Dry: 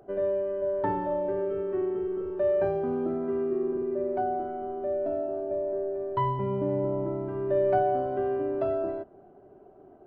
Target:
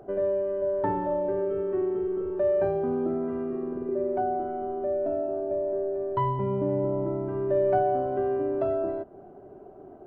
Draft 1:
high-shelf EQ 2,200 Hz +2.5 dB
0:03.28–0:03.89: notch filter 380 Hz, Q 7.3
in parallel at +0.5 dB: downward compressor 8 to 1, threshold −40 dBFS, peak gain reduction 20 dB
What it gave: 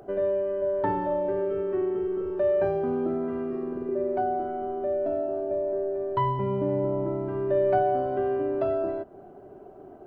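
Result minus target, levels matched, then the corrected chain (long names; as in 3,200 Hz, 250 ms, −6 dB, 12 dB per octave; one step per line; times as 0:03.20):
4,000 Hz band +5.5 dB
high-shelf EQ 2,200 Hz −6.5 dB
0:03.28–0:03.89: notch filter 380 Hz, Q 7.3
in parallel at +0.5 dB: downward compressor 8 to 1, threshold −40 dBFS, peak gain reduction 19 dB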